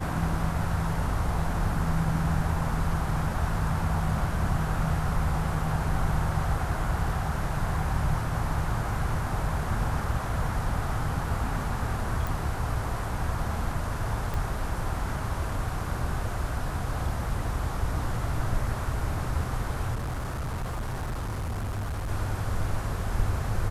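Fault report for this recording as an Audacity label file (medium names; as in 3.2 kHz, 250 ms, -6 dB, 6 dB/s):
12.270000	12.270000	pop
14.340000	14.340000	pop
19.940000	22.110000	clipped -28 dBFS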